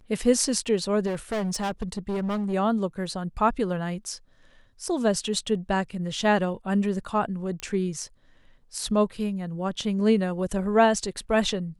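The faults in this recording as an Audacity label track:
1.060000	2.540000	clipped -24.5 dBFS
7.600000	7.600000	pop -17 dBFS

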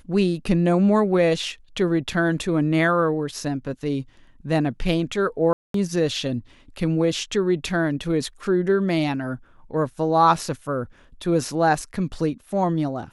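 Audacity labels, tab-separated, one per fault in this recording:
5.530000	5.740000	dropout 213 ms

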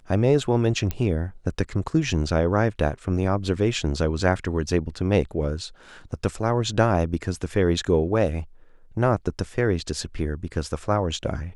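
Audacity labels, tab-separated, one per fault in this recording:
0.910000	0.910000	pop -13 dBFS

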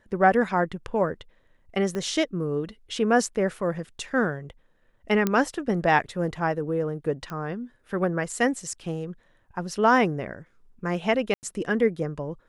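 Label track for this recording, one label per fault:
1.950000	1.950000	pop -19 dBFS
5.270000	5.270000	pop -10 dBFS
7.300000	7.300000	pop -22 dBFS
11.340000	11.430000	dropout 89 ms

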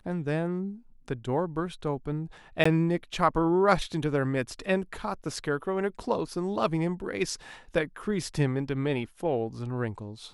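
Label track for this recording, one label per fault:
2.640000	2.650000	dropout 15 ms

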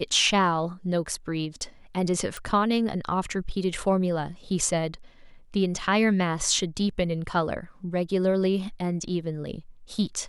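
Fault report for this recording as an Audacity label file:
2.370000	2.370000	pop

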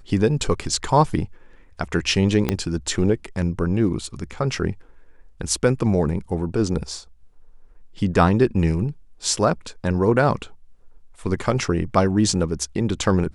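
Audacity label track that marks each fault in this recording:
2.490000	2.490000	pop -6 dBFS

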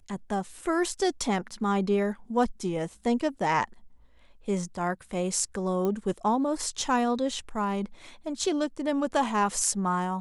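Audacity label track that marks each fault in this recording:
5.850000	5.850000	pop -18 dBFS

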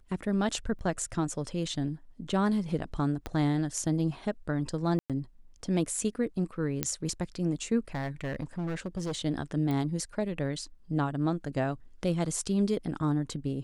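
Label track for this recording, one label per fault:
0.790000	0.790000	dropout 2.3 ms
3.260000	3.260000	pop -20 dBFS
4.990000	5.100000	dropout 107 ms
6.830000	6.830000	pop -10 dBFS
7.940000	9.180000	clipped -29 dBFS
9.710000	9.710000	pop -21 dBFS

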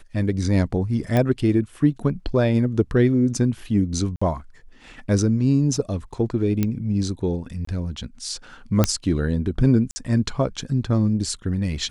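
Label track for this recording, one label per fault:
1.170000	1.170000	pop -10 dBFS
4.160000	4.210000	dropout 55 ms
6.630000	6.630000	pop -9 dBFS
7.650000	7.670000	dropout 24 ms
8.840000	8.840000	pop -3 dBFS
9.910000	9.960000	dropout 50 ms

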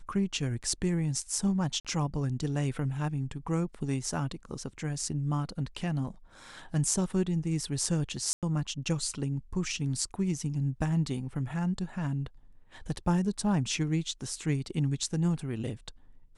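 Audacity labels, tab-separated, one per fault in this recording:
1.800000	1.850000	dropout 47 ms
8.330000	8.430000	dropout 97 ms

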